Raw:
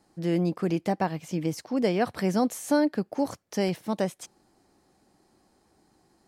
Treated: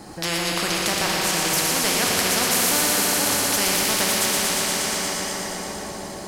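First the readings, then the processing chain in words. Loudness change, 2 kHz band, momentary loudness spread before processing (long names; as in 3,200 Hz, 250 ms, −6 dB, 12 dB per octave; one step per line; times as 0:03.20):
+8.0 dB, +16.0 dB, 6 LU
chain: delay with a high-pass on its return 118 ms, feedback 80%, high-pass 3,000 Hz, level −5 dB
dense smooth reverb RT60 4.3 s, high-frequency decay 0.75×, DRR −2.5 dB
every bin compressed towards the loudest bin 4 to 1
level +4.5 dB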